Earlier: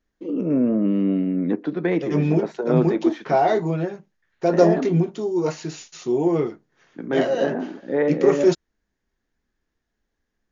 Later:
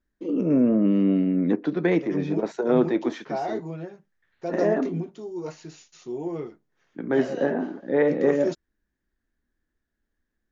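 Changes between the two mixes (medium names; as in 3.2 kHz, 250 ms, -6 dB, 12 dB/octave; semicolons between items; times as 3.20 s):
first voice: remove distance through air 68 m; second voice -11.0 dB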